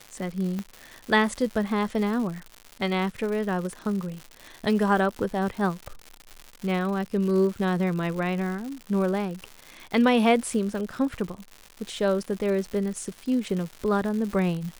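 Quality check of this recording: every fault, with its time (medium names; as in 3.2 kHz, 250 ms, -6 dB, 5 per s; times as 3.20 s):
crackle 200 per s -32 dBFS
0.59 s: pop -19 dBFS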